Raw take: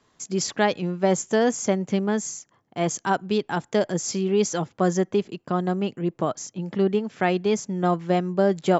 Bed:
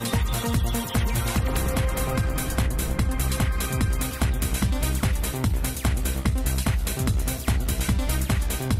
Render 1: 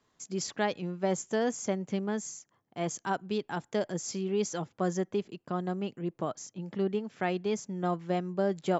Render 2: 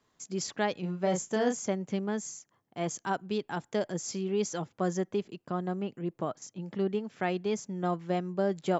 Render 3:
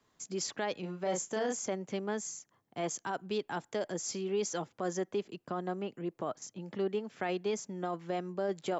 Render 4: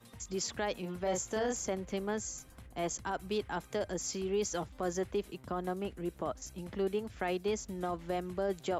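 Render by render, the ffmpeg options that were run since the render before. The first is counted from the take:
-af "volume=-8.5dB"
-filter_complex "[0:a]asettb=1/sr,asplit=3[a][b][c];[a]atrim=end=0.804[d];[b]atrim=start=0.8:end=1.6,asetpts=PTS-STARTPTS,afade=t=in:d=0.004:c=qsin,afade=t=out:st=0.796:d=0.004:c=qsin,asplit=2[e][f];[f]adelay=33,volume=-5dB[g];[e][g]amix=inputs=2:normalize=0,atrim=end_sample=35280[h];[c]atrim=start=1.596[i];[d][h]acrossfade=d=0.004:c1=hsin:c2=qsin[j];[j][i]acrossfade=d=0.004:c1=qsin:c2=hsin,asettb=1/sr,asplit=3[k][l][m];[k]atrim=end=5.514[n];[l]atrim=start=5.51:end=6.42,asetpts=PTS-STARTPTS,afade=t=in:d=0.004:c=qsin,afade=t=out:st=0.906:d=0.004:c=qsin,acrossover=split=2800[o][p];[p]acompressor=threshold=-59dB:ratio=4:attack=1:release=60[q];[o][q]amix=inputs=2:normalize=0[r];[m]atrim=start=6.416[s];[n][r]acrossfade=d=0.004:c1=hsin:c2=qsin[t];[t][s]acrossfade=d=0.004:c1=qsin:c2=hsin"
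-filter_complex "[0:a]acrossover=split=270|1300[a][b][c];[a]acompressor=threshold=-45dB:ratio=6[d];[d][b][c]amix=inputs=3:normalize=0,alimiter=level_in=0.5dB:limit=-24dB:level=0:latency=1:release=17,volume=-0.5dB"
-filter_complex "[1:a]volume=-29.5dB[a];[0:a][a]amix=inputs=2:normalize=0"

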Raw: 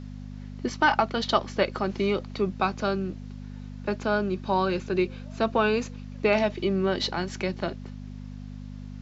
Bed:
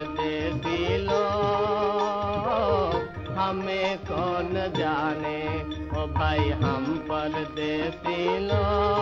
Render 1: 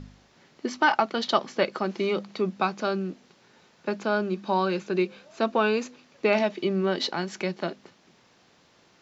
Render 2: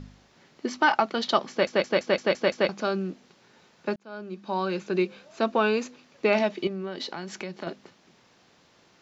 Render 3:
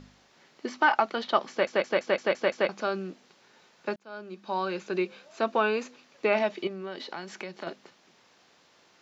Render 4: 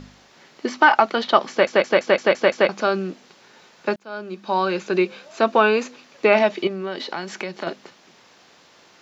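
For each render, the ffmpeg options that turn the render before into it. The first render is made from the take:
-af "bandreject=f=50:t=h:w=4,bandreject=f=100:t=h:w=4,bandreject=f=150:t=h:w=4,bandreject=f=200:t=h:w=4,bandreject=f=250:t=h:w=4"
-filter_complex "[0:a]asettb=1/sr,asplit=3[a][b][c];[a]atrim=end=6.674[d];[b]atrim=start=6.67:end=7.67,asetpts=PTS-STARTPTS,afade=t=in:d=0.004:c=qsin,afade=t=out:st=0.996:d=0.004:c=qsin,acompressor=threshold=-32dB:ratio=3:attack=3.2:release=140:knee=1:detection=peak[e];[c]atrim=start=7.666[f];[d][e]acrossfade=d=0.004:c1=hsin:c2=qsin[g];[g][f]acrossfade=d=0.004:c1=qsin:c2=hsin,asplit=9[h][i][j][k][l][m][n][o][p];[h]atrim=end=1.672[q];[i]atrim=start=1.498:end=1.672[r];[j]atrim=start=1.498:end=1.672[s];[k]atrim=start=1.498:end=1.672[t];[l]atrim=start=1.498:end=1.672[u];[m]atrim=start=1.498:end=1.672[v];[n]atrim=start=1.498:end=1.672[w];[o]atrim=start=2.688:end=3.96,asetpts=PTS-STARTPTS,afade=t=out:st=1.268:d=0.004:c=hsin[x];[p]atrim=start=3.96,asetpts=PTS-STARTPTS,afade=t=in:d=0.96[y];[q][r]acrossfade=d=0.004:c1=hsin:c2=hsin[z];[z][s]acrossfade=d=0.004:c1=hsin:c2=hsin[aa];[aa][t]acrossfade=d=0.004:c1=hsin:c2=hsin[ab];[ab][u]acrossfade=d=0.004:c1=hsin:c2=hsin[ac];[ac][v]acrossfade=d=0.004:c1=hsin:c2=hsin[ad];[ad][w]acrossfade=d=0.004:c1=hsin:c2=hsin[ae];[x][y]concat=n=2:v=0:a=1[af];[ae][af]acrossfade=d=0.004:c1=hsin:c2=hsin"
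-filter_complex "[0:a]acrossover=split=3000[a][b];[b]acompressor=threshold=-45dB:ratio=4:attack=1:release=60[c];[a][c]amix=inputs=2:normalize=0,lowshelf=f=240:g=-11.5"
-af "volume=9dB,alimiter=limit=-2dB:level=0:latency=1"

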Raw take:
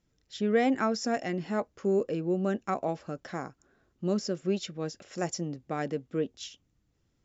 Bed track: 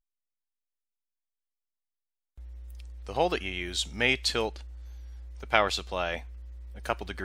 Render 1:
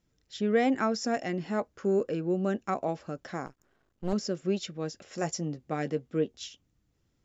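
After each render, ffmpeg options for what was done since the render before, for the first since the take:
-filter_complex "[0:a]asettb=1/sr,asplit=3[a][b][c];[a]atrim=end=1.734[d];[b]atrim=start=1.73:end=2.32,asetpts=PTS-STARTPTS,afade=t=in:d=0.004:c=qsin,afade=t=out:st=0.586:d=0.004:c=qsin,equalizer=f=1.5k:w=3.8:g=7[e];[c]atrim=start=2.316[f];[d][e]acrossfade=d=0.004:c1=hsin:c2=qsin[g];[g][f]acrossfade=d=0.004:c1=qsin:c2=hsin,asettb=1/sr,asplit=3[h][i][j];[h]atrim=end=3.464[k];[i]atrim=start=3.46:end=4.13,asetpts=PTS-STARTPTS,afade=t=in:d=0.004:c=qsin,afade=t=out:st=0.666:d=0.004:c=qsin,aeval=exprs='max(val(0),0)':c=same[l];[j]atrim=start=4.126[m];[k][l]acrossfade=d=0.004:c1=hsin:c2=qsin[n];[n][m]acrossfade=d=0.004:c1=qsin:c2=hsin,asettb=1/sr,asplit=3[o][p][q];[o]atrim=end=5.024[r];[p]atrim=start=5.02:end=6.45,asetpts=PTS-STARTPTS,afade=t=in:d=0.004:c=qsin,afade=t=out:st=1.426:d=0.004:c=qsin,asplit=2[s][t];[t]adelay=13,volume=-9.5dB[u];[s][u]amix=inputs=2:normalize=0,atrim=end_sample=63063[v];[q]atrim=start=6.446[w];[r][v]acrossfade=d=0.004:c1=hsin:c2=qsin[x];[x][w]acrossfade=d=0.004:c1=qsin:c2=hsin"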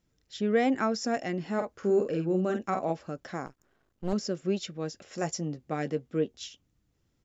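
-filter_complex "[0:a]asplit=3[a][b][c];[a]afade=t=out:st=1.58:d=0.02[d];[b]asplit=2[e][f];[f]adelay=49,volume=-6dB[g];[e][g]amix=inputs=2:normalize=0,afade=t=in:st=1.58:d=0.02,afade=t=out:st=2.92:d=0.02[h];[c]afade=t=in:st=2.92:d=0.02[i];[d][h][i]amix=inputs=3:normalize=0"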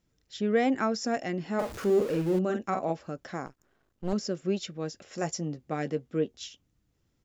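-filter_complex "[0:a]asettb=1/sr,asplit=3[a][b][c];[a]atrim=end=1.594[d];[b]atrim=start=1.59:end=2.39,asetpts=PTS-STARTPTS,afade=t=in:d=0.004:c=qsin,afade=t=out:st=0.796:d=0.004:c=qsin,aeval=exprs='val(0)+0.5*0.0158*sgn(val(0))':c=same[e];[c]atrim=start=2.386[f];[d][e]acrossfade=d=0.004:c1=hsin:c2=qsin[g];[g][f]acrossfade=d=0.004:c1=qsin:c2=hsin"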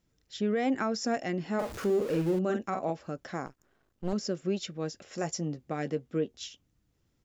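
-af "alimiter=limit=-20dB:level=0:latency=1:release=146"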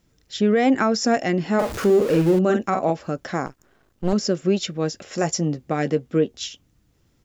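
-af "volume=10.5dB"

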